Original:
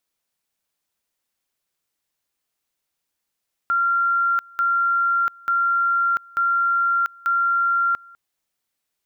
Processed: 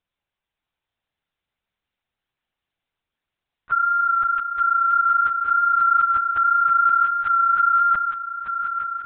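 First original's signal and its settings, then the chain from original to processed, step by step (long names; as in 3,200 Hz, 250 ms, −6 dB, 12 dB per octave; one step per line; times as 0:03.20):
tone at two levels in turn 1,380 Hz −16.5 dBFS, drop 26 dB, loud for 0.69 s, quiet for 0.20 s, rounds 5
on a send: feedback echo with a long and a short gap by turns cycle 876 ms, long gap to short 1.5 to 1, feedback 57%, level −7 dB
on the sum: linear-prediction vocoder at 8 kHz whisper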